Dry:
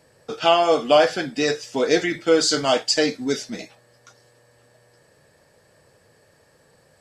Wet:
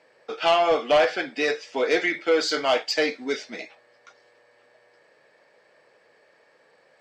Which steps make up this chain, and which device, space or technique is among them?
intercom (BPF 390–3800 Hz; bell 2200 Hz +6 dB 0.34 oct; soft clip -12 dBFS, distortion -15 dB)

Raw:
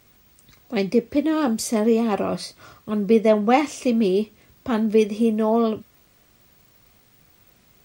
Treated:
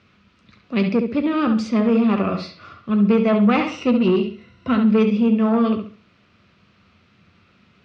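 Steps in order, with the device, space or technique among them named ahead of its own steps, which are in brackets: 3.67–4.77 ripple EQ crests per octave 2, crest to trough 12 dB; analogue delay pedal into a guitar amplifier (analogue delay 68 ms, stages 2048, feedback 30%, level -7 dB; tube stage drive 12 dB, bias 0.2; speaker cabinet 79–4500 Hz, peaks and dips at 88 Hz +8 dB, 200 Hz +10 dB, 780 Hz -5 dB, 1300 Hz +8 dB, 2600 Hz +6 dB)

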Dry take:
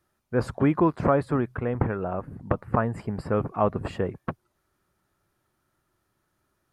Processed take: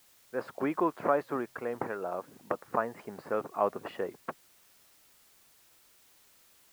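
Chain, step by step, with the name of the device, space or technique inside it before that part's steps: dictaphone (BPF 380–3400 Hz; AGC gain up to 4.5 dB; wow and flutter; white noise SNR 27 dB); gain -8 dB

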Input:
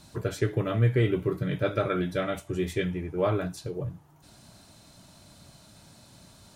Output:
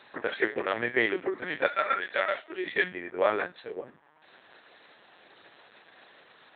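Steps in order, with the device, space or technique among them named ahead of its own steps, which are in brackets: 1.66–2.64 HPF 880 Hz -> 290 Hz 12 dB/oct; talking toy (LPC vocoder at 8 kHz pitch kept; HPF 480 Hz 12 dB/oct; bell 1800 Hz +10.5 dB 0.52 oct); gain +3 dB

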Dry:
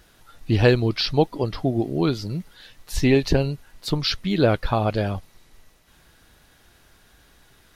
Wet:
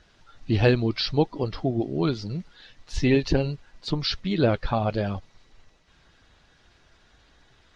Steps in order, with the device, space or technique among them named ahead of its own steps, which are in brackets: clip after many re-uploads (LPF 6300 Hz 24 dB/oct; bin magnitudes rounded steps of 15 dB); gain -2.5 dB

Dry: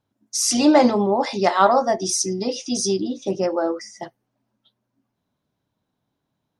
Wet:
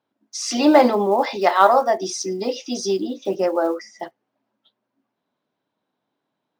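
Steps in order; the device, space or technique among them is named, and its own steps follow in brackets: early digital voice recorder (BPF 290–3900 Hz; block floating point 7-bit); 1.36–1.97 HPF 270 Hz 6 dB/oct; gain +2.5 dB

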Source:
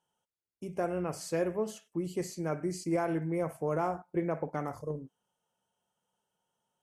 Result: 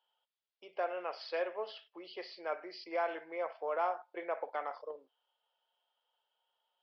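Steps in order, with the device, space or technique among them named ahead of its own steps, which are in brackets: musical greeting card (downsampling 11025 Hz; HPF 540 Hz 24 dB/oct; bell 3300 Hz +7.5 dB 0.52 oct)

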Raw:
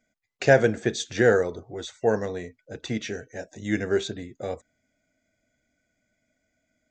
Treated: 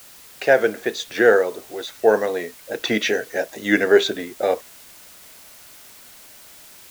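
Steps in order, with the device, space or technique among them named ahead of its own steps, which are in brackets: dictaphone (BPF 380–4500 Hz; AGC gain up to 15 dB; wow and flutter; white noise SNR 23 dB)

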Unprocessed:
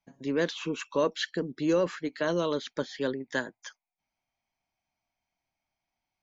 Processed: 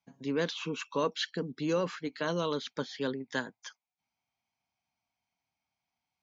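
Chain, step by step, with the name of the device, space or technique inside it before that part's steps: car door speaker (speaker cabinet 81–6700 Hz, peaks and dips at 340 Hz -7 dB, 590 Hz -7 dB, 1800 Hz -5 dB)

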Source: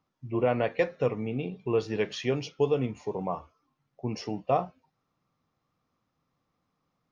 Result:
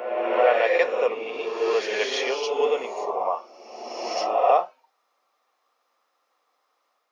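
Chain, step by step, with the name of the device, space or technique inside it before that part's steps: ghost voice (reverse; reverb RT60 1.7 s, pre-delay 37 ms, DRR -0.5 dB; reverse; HPF 500 Hz 24 dB/oct); gain +7 dB

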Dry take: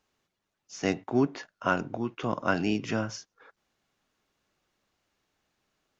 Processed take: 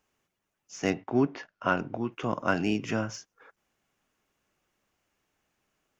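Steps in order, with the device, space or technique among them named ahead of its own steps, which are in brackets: exciter from parts (in parallel at -5 dB: HPF 2500 Hz 12 dB/oct + soft clip -32 dBFS, distortion -13 dB + HPF 3000 Hz 24 dB/oct); 0.9–2.12 on the sum: LPF 5400 Hz 24 dB/oct

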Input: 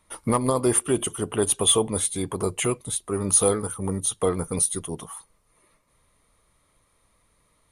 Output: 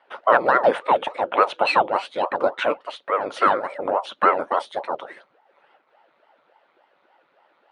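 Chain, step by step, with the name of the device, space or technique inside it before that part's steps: 2.49–3.78 low shelf 130 Hz -11.5 dB; voice changer toy (ring modulator with a swept carrier 480 Hz, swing 85%, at 3.5 Hz; speaker cabinet 450–3500 Hz, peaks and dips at 560 Hz +8 dB, 870 Hz +4 dB, 1400 Hz +5 dB); gain +7 dB

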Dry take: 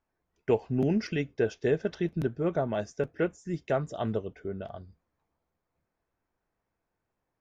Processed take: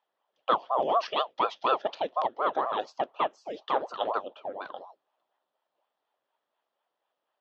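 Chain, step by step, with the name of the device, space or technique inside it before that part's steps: voice changer toy (ring modulator with a swept carrier 520 Hz, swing 80%, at 4.1 Hz; speaker cabinet 590–4700 Hz, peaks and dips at 610 Hz +4 dB, 1500 Hz -4 dB, 2200 Hz -8 dB, 3300 Hz +8 dB); gain +6 dB

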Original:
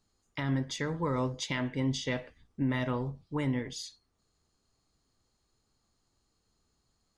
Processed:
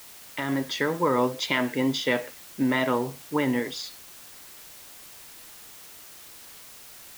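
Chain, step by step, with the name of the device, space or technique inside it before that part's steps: dictaphone (BPF 280–4300 Hz; AGC gain up to 6 dB; wow and flutter; white noise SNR 17 dB); gain +4 dB

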